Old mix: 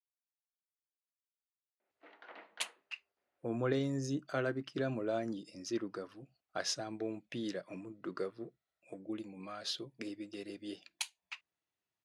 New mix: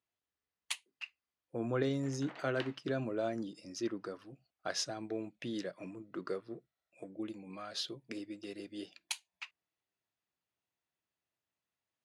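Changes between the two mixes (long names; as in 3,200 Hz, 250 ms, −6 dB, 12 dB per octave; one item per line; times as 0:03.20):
speech: entry −1.90 s
background: remove high-frequency loss of the air 190 metres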